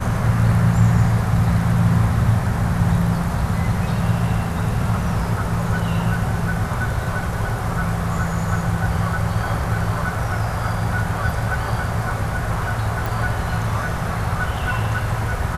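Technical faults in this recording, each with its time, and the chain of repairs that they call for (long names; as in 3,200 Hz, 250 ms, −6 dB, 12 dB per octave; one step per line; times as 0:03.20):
0:13.06: click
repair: click removal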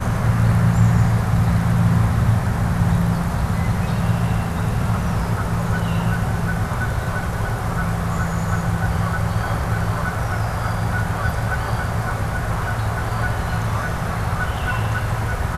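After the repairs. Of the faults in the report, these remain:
none of them is left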